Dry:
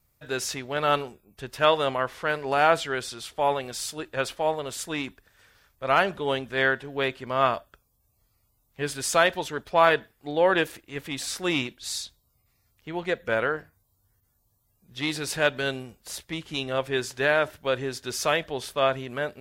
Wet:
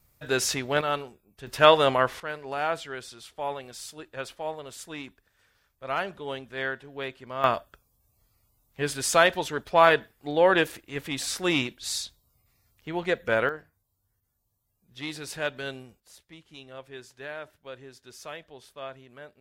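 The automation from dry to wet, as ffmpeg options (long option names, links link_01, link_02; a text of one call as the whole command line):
ffmpeg -i in.wav -af "asetnsamples=nb_out_samples=441:pad=0,asendcmd='0.81 volume volume -5dB;1.47 volume volume 4dB;2.2 volume volume -8dB;7.44 volume volume 1dB;13.49 volume volume -7dB;16 volume volume -16dB',volume=4dB" out.wav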